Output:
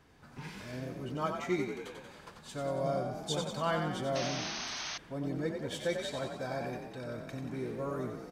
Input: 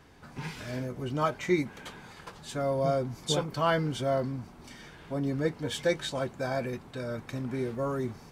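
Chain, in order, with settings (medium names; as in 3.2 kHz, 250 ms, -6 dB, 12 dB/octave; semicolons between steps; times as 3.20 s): frequency-shifting echo 92 ms, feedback 60%, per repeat +34 Hz, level -6 dB; painted sound noise, 4.15–4.98 s, 590–6500 Hz -33 dBFS; trim -6.5 dB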